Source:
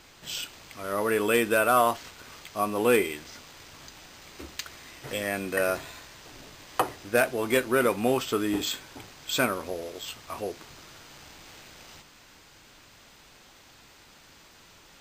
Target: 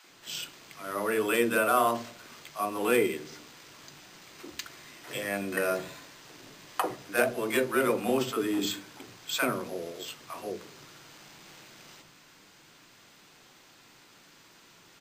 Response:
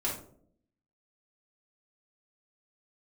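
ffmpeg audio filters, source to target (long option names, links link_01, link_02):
-filter_complex "[0:a]lowshelf=frequency=100:width_type=q:width=1.5:gain=-12.5,acrossover=split=190|680[link_01][link_02][link_03];[link_02]adelay=40[link_04];[link_01]adelay=100[link_05];[link_05][link_04][link_03]amix=inputs=3:normalize=0,asplit=2[link_06][link_07];[1:a]atrim=start_sample=2205,lowpass=2100[link_08];[link_07][link_08]afir=irnorm=-1:irlink=0,volume=-16dB[link_09];[link_06][link_09]amix=inputs=2:normalize=0,volume=-2.5dB"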